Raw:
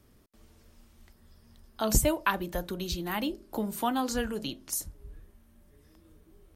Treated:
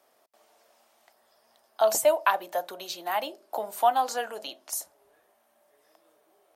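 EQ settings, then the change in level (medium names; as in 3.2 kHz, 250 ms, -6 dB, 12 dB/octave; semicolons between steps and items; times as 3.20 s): resonant high-pass 680 Hz, resonance Q 3.9; 0.0 dB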